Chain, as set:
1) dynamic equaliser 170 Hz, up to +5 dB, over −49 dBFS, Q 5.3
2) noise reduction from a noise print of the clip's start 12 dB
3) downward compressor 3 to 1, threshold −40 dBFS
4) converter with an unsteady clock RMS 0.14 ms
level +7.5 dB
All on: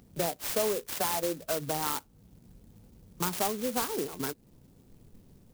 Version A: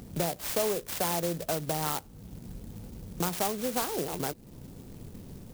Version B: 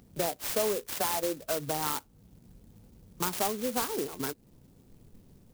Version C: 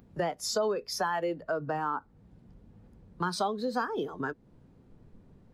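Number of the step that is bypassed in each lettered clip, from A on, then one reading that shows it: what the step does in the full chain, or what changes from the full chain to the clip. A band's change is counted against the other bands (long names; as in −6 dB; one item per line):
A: 2, 125 Hz band +5.5 dB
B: 1, 125 Hz band −1.5 dB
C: 4, 8 kHz band −7.5 dB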